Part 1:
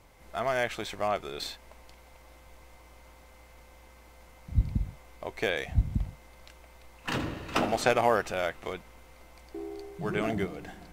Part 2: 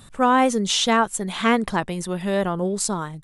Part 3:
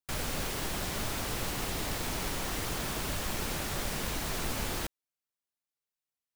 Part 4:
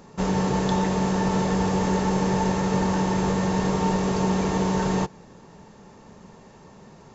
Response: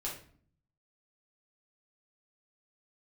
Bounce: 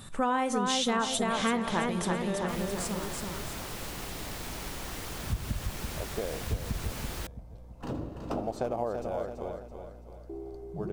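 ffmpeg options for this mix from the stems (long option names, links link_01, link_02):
-filter_complex "[0:a]aeval=exprs='val(0)+0.00178*(sin(2*PI*60*n/s)+sin(2*PI*2*60*n/s)/2+sin(2*PI*3*60*n/s)/3+sin(2*PI*4*60*n/s)/4+sin(2*PI*5*60*n/s)/5)':channel_layout=same,firequalizer=gain_entry='entry(590,0);entry(1900,-20);entry(4700,-12)':delay=0.05:min_phase=1,adelay=750,volume=-2dB,asplit=2[link_01][link_02];[link_02]volume=-8dB[link_03];[1:a]volume=-1.5dB,afade=type=out:start_time=2.16:duration=0.22:silence=0.251189,asplit=4[link_04][link_05][link_06][link_07];[link_05]volume=-9.5dB[link_08];[link_06]volume=-3.5dB[link_09];[2:a]adelay=2400,volume=-4.5dB[link_10];[3:a]adelay=1200,volume=-13.5dB[link_11];[link_07]apad=whole_len=367887[link_12];[link_11][link_12]sidechaingate=range=-33dB:threshold=-35dB:ratio=16:detection=peak[link_13];[4:a]atrim=start_sample=2205[link_14];[link_08][link_14]afir=irnorm=-1:irlink=0[link_15];[link_03][link_09]amix=inputs=2:normalize=0,aecho=0:1:333|666|999|1332|1665|1998:1|0.43|0.185|0.0795|0.0342|0.0147[link_16];[link_01][link_04][link_10][link_13][link_15][link_16]amix=inputs=6:normalize=0,acompressor=threshold=-28dB:ratio=3"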